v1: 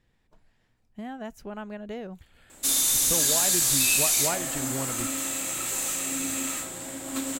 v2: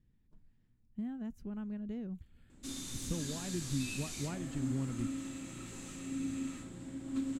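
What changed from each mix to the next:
background: add air absorption 70 m; master: add EQ curve 240 Hz 0 dB, 650 Hz -19 dB, 1100 Hz -16 dB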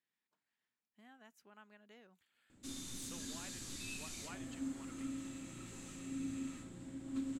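speech: add HPF 990 Hz 12 dB/oct; background -4.0 dB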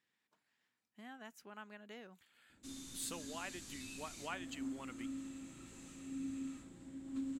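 speech +8.5 dB; reverb: off

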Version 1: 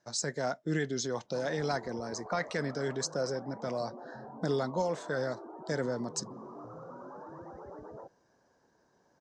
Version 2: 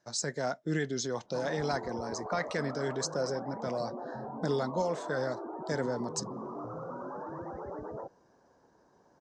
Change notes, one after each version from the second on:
background +6.0 dB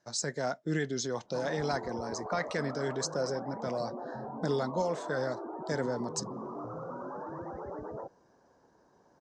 none

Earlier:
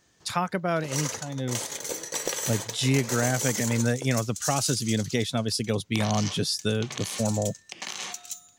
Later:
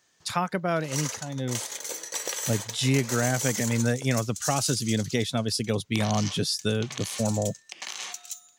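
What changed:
background: add HPF 690 Hz 6 dB/oct; reverb: off

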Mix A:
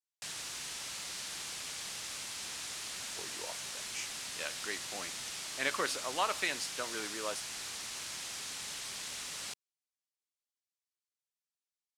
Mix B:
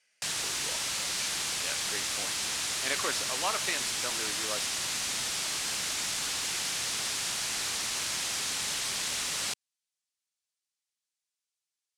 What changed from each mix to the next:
speech: entry -2.75 s; background +9.5 dB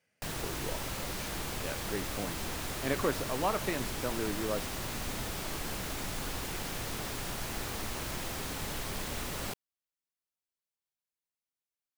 background: add tone controls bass -9 dB, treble 0 dB; master: remove weighting filter ITU-R 468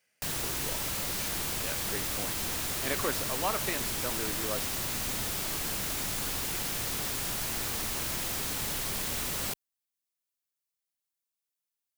background: add low shelf 270 Hz +9.5 dB; master: add tilt +2.5 dB/oct

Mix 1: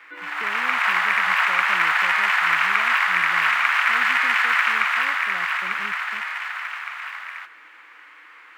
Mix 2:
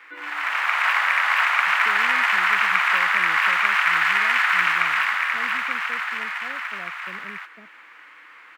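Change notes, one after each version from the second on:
speech: entry +1.45 s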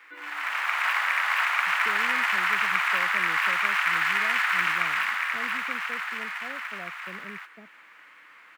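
background -5.5 dB; master: add high shelf 6700 Hz +7.5 dB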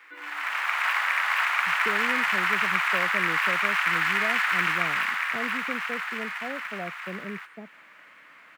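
speech +8.0 dB

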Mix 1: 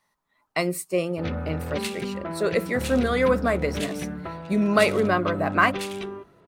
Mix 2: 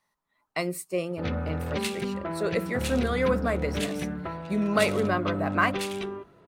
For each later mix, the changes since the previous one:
speech -4.5 dB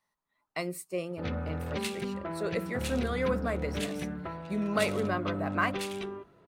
speech -5.0 dB; background -4.0 dB

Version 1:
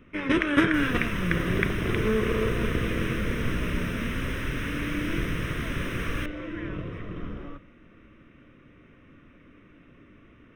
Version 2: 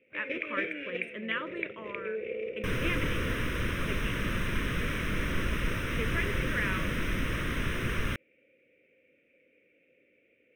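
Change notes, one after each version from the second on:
speech +11.5 dB; first sound: add double band-pass 1100 Hz, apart 2.2 oct; second sound: entry +1.90 s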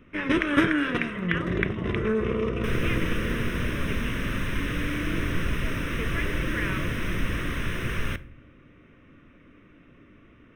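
first sound: remove double band-pass 1100 Hz, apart 2.2 oct; second sound: send on

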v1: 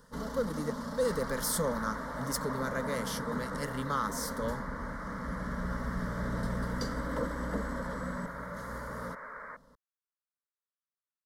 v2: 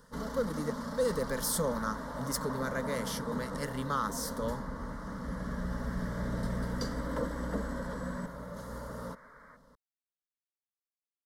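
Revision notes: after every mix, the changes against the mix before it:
second sound -11.5 dB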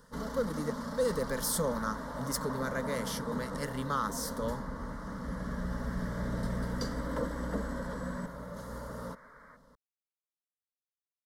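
none

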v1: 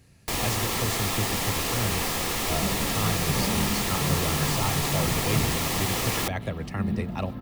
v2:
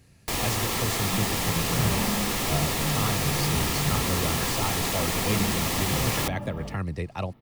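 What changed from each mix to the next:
second sound: entry -1.50 s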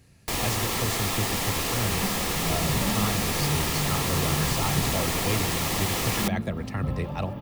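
second sound: entry +0.90 s

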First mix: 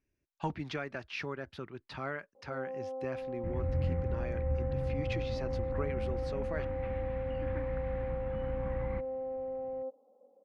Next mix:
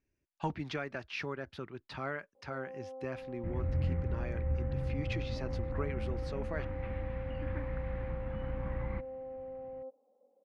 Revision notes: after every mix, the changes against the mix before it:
first sound -6.0 dB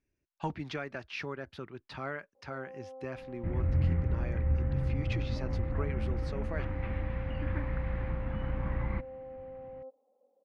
first sound: add tilt +1.5 dB/oct; second sound +4.5 dB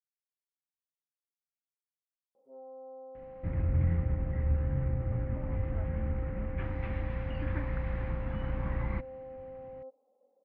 speech: muted

